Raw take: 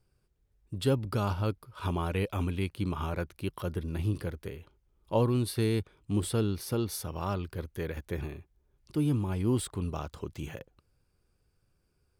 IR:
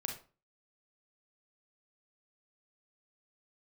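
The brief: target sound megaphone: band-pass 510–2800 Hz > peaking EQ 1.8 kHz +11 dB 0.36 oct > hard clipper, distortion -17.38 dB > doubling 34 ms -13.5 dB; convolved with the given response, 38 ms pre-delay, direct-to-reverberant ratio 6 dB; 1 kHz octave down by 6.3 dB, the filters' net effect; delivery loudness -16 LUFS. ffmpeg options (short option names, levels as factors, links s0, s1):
-filter_complex "[0:a]equalizer=f=1000:t=o:g=-8.5,asplit=2[s0][s1];[1:a]atrim=start_sample=2205,adelay=38[s2];[s1][s2]afir=irnorm=-1:irlink=0,volume=0.473[s3];[s0][s3]amix=inputs=2:normalize=0,highpass=510,lowpass=2800,equalizer=f=1800:t=o:w=0.36:g=11,asoftclip=type=hard:threshold=0.0376,asplit=2[s4][s5];[s5]adelay=34,volume=0.211[s6];[s4][s6]amix=inputs=2:normalize=0,volume=17.8"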